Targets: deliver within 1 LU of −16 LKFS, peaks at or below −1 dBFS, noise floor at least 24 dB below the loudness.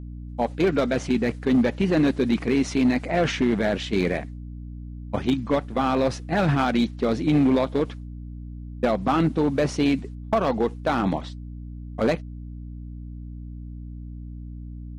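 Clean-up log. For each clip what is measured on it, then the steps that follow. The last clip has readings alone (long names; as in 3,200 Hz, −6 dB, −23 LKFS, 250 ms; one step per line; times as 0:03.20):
share of clipped samples 1.3%; peaks flattened at −14.0 dBFS; mains hum 60 Hz; hum harmonics up to 300 Hz; level of the hum −34 dBFS; integrated loudness −23.5 LKFS; sample peak −14.0 dBFS; target loudness −16.0 LKFS
→ clipped peaks rebuilt −14 dBFS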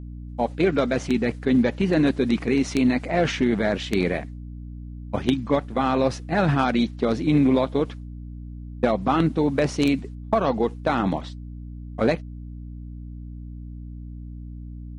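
share of clipped samples 0.0%; mains hum 60 Hz; hum harmonics up to 300 Hz; level of the hum −34 dBFS
→ hum removal 60 Hz, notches 5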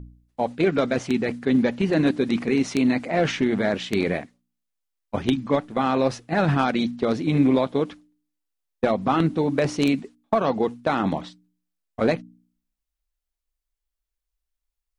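mains hum none found; integrated loudness −23.5 LKFS; sample peak −5.0 dBFS; target loudness −16.0 LKFS
→ level +7.5 dB
brickwall limiter −1 dBFS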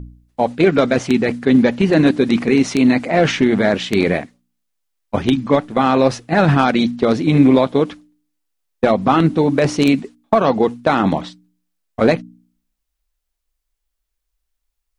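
integrated loudness −16.0 LKFS; sample peak −1.0 dBFS; background noise floor −76 dBFS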